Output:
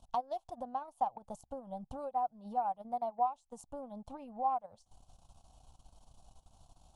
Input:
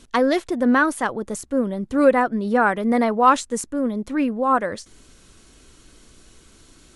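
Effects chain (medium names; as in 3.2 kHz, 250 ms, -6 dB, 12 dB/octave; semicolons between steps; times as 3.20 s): compression 16:1, threshold -26 dBFS, peak gain reduction 18 dB; FFT filter 140 Hz 0 dB, 390 Hz -20 dB, 780 Hz +13 dB, 1.9 kHz -29 dB, 2.9 kHz -9 dB; transient shaper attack +2 dB, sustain -12 dB; trim -7.5 dB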